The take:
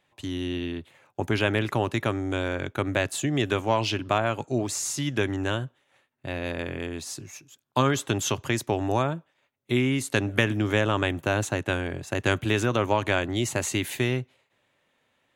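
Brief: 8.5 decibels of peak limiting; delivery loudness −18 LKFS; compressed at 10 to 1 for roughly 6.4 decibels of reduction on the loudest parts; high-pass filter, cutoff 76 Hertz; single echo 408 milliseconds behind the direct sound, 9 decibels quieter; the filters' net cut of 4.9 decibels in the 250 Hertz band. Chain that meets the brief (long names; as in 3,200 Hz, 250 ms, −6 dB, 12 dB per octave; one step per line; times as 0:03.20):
high-pass filter 76 Hz
parametric band 250 Hz −6.5 dB
downward compressor 10 to 1, threshold −26 dBFS
brickwall limiter −20.5 dBFS
single-tap delay 408 ms −9 dB
level +15.5 dB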